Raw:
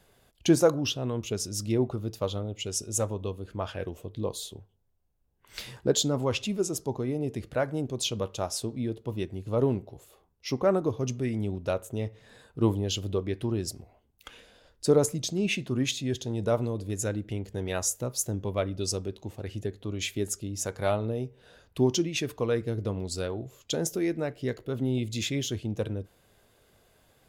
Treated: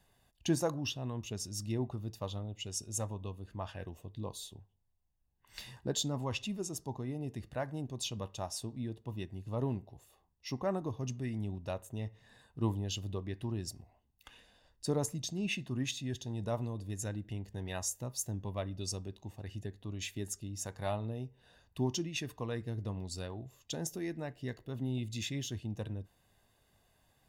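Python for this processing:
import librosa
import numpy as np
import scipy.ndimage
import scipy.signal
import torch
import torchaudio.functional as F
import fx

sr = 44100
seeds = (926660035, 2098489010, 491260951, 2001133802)

y = x + 0.46 * np.pad(x, (int(1.1 * sr / 1000.0), 0))[:len(x)]
y = y * 10.0 ** (-8.5 / 20.0)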